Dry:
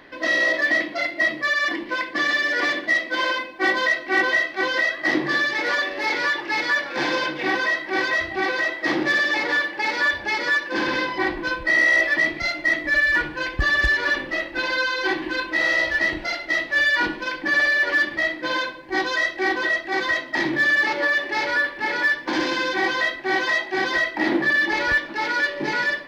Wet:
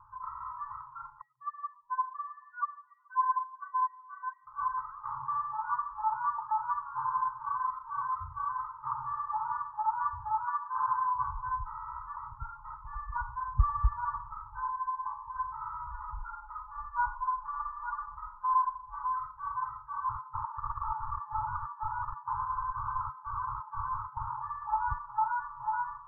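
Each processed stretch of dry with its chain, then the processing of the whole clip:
0:01.21–0:04.47: expanding power law on the bin magnitudes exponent 2.6 + Gaussian smoothing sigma 2.6 samples + delay with a band-pass on its return 143 ms, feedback 68%, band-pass 550 Hz, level −22 dB
0:10.44–0:11.16: high-pass filter 180 Hz + high-shelf EQ 2,200 Hz +8.5 dB
0:14.68–0:15.36: low-shelf EQ 330 Hz −9.5 dB + phaser with its sweep stopped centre 2,100 Hz, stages 8
0:15.87–0:19.10: parametric band 240 Hz −13.5 dB 1.5 octaves + comb filter 4.9 ms, depth 76%
0:20.07–0:24.29: Butterworth high-pass 550 Hz + wrap-around overflow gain 18.5 dB
whole clip: Butterworth low-pass 1,300 Hz 96 dB per octave; brick-wall band-stop 130–850 Hz

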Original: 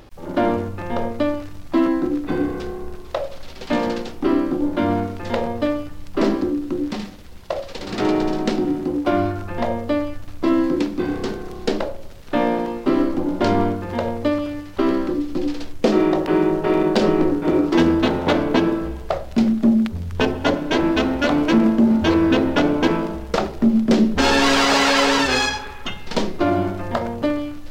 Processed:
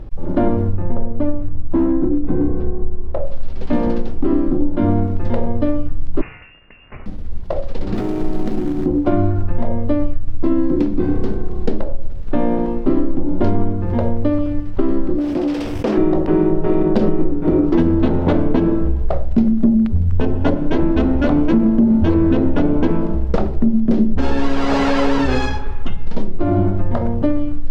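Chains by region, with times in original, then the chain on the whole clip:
0:00.77–0:03.27: low-pass filter 1,000 Hz 6 dB per octave + hard clipping −15.5 dBFS
0:06.21–0:07.06: high-pass filter 990 Hz + voice inversion scrambler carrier 3,100 Hz
0:07.95–0:08.86: downward compressor 16 to 1, threshold −22 dBFS + log-companded quantiser 4 bits
0:15.18–0:15.98: lower of the sound and its delayed copy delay 0.36 ms + high-pass filter 750 Hz 6 dB per octave + envelope flattener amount 70%
whole clip: spectral tilt −4 dB per octave; downward compressor, threshold −8 dBFS; level −1.5 dB

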